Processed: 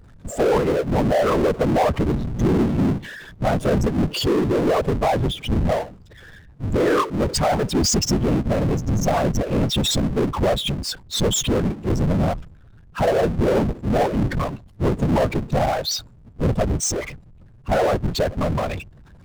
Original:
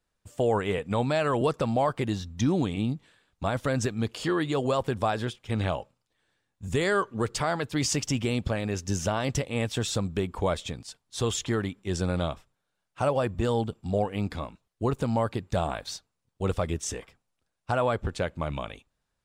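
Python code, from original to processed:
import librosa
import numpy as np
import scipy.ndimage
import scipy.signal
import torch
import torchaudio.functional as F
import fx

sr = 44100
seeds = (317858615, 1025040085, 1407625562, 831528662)

y = fx.spec_expand(x, sr, power=2.3)
y = fx.whisperise(y, sr, seeds[0])
y = fx.power_curve(y, sr, exponent=0.5)
y = y * 10.0 ** (3.0 / 20.0)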